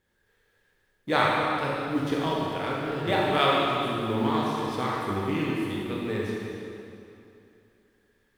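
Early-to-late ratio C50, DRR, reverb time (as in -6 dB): -3.0 dB, -5.0 dB, 2.7 s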